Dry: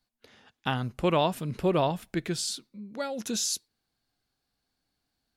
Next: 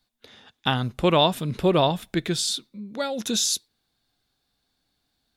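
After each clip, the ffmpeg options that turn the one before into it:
-af "equalizer=f=3600:w=7.2:g=9.5,volume=1.78"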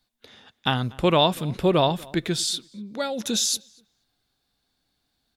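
-filter_complex "[0:a]asplit=2[s0][s1];[s1]adelay=241,lowpass=f=2500:p=1,volume=0.0668,asplit=2[s2][s3];[s3]adelay=241,lowpass=f=2500:p=1,volume=0.23[s4];[s0][s2][s4]amix=inputs=3:normalize=0"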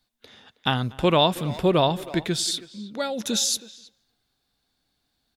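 -filter_complex "[0:a]asplit=2[s0][s1];[s1]adelay=320,highpass=300,lowpass=3400,asoftclip=type=hard:threshold=0.168,volume=0.158[s2];[s0][s2]amix=inputs=2:normalize=0"

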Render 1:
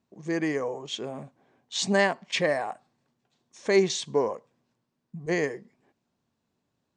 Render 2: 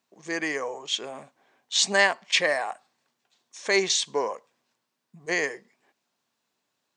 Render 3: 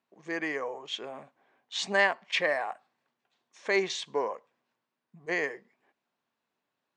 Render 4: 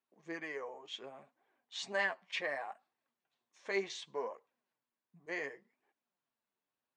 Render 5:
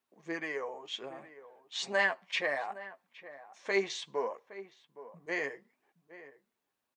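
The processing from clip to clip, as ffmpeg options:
-af "highpass=f=1400:p=1,volume=2.37"
-af "bass=f=250:g=-1,treble=f=4000:g=-14,volume=0.708"
-af "flanger=delay=2.1:depth=9.4:regen=34:speed=0.68:shape=triangular,volume=0.501"
-filter_complex "[0:a]asplit=2[s0][s1];[s1]adelay=816.3,volume=0.178,highshelf=f=4000:g=-18.4[s2];[s0][s2]amix=inputs=2:normalize=0,volume=1.88"

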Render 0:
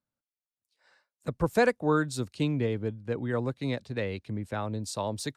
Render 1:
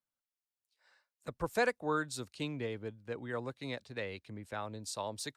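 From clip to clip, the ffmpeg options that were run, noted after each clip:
-af "equalizer=f=130:w=0.31:g=-9.5,volume=0.668"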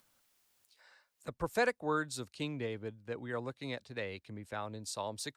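-af "acompressor=mode=upward:threshold=0.00178:ratio=2.5"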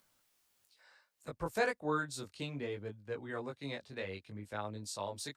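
-af "flanger=delay=19:depth=2.8:speed=0.64,volume=1.19"

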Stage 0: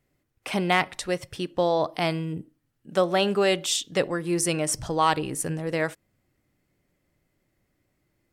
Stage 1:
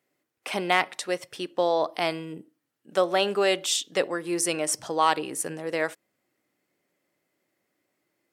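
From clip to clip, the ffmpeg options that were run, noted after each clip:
-af "highpass=310"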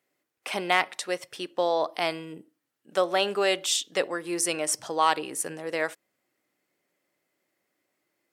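-af "lowshelf=f=340:g=-5.5"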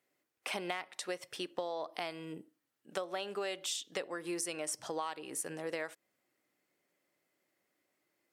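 -af "acompressor=threshold=0.0282:ratio=12,volume=0.708"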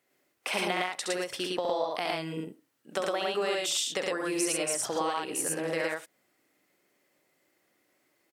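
-af "aecho=1:1:67.06|110.8:0.631|0.891,volume=1.88"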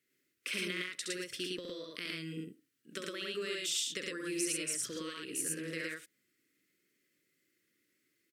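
-af "asuperstop=centerf=790:order=4:qfactor=0.67,volume=0.596"

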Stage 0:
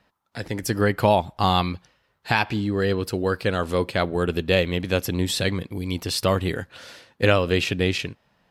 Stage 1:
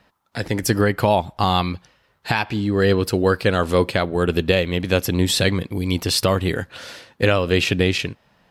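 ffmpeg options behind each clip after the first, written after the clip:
-af "alimiter=limit=0.266:level=0:latency=1:release=479,volume=2"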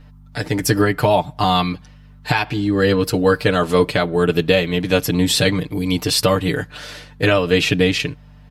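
-af "aeval=exprs='val(0)+0.00708*(sin(2*PI*50*n/s)+sin(2*PI*2*50*n/s)/2+sin(2*PI*3*50*n/s)/3+sin(2*PI*4*50*n/s)/4+sin(2*PI*5*50*n/s)/5)':c=same,aecho=1:1:6.7:0.89"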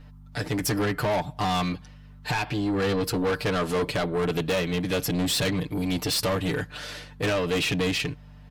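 -af "asoftclip=type=tanh:threshold=0.119,volume=0.708"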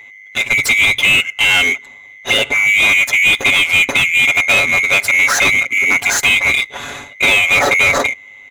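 -filter_complex "[0:a]afftfilt=real='real(if(lt(b,920),b+92*(1-2*mod(floor(b/92),2)),b),0)':imag='imag(if(lt(b,920),b+92*(1-2*mod(floor(b/92),2)),b),0)':win_size=2048:overlap=0.75,asplit=2[s0][s1];[s1]adynamicsmooth=sensitivity=6.5:basefreq=1400,volume=1.26[s2];[s0][s2]amix=inputs=2:normalize=0,volume=2.11"

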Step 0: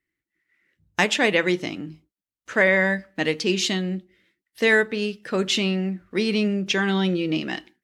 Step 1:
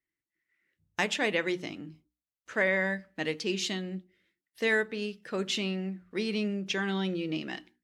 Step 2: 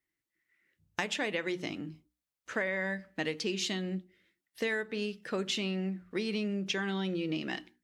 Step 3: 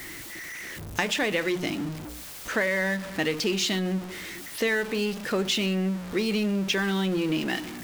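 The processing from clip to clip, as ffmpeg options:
-af "bandreject=f=60:t=h:w=6,bandreject=f=120:t=h:w=6,bandreject=f=180:t=h:w=6,bandreject=f=240:t=h:w=6,bandreject=f=300:t=h:w=6,volume=0.376"
-af "acompressor=threshold=0.0251:ratio=6,volume=1.33"
-af "aeval=exprs='val(0)+0.5*0.0133*sgn(val(0))':c=same,volume=1.88"

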